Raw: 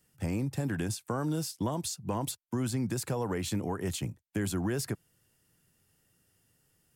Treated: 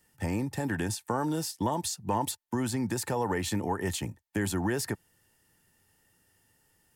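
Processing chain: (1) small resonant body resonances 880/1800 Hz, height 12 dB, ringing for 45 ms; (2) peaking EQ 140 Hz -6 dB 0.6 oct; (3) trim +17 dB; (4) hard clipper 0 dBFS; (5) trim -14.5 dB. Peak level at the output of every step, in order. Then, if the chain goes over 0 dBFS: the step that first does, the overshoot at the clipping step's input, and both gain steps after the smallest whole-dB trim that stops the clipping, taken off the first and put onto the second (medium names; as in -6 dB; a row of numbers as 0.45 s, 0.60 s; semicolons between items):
-19.5 dBFS, -19.0 dBFS, -2.0 dBFS, -2.0 dBFS, -16.5 dBFS; nothing clips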